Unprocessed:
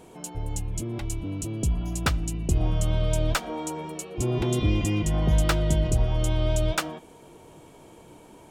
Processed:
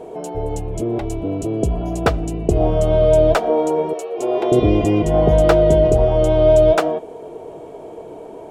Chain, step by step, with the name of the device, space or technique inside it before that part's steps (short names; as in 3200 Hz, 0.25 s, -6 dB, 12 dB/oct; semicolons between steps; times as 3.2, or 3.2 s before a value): 3.93–4.52 HPF 530 Hz 12 dB/oct; inside a helmet (high shelf 4500 Hz -8 dB; small resonant body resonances 450/640 Hz, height 17 dB, ringing for 25 ms); gain +3.5 dB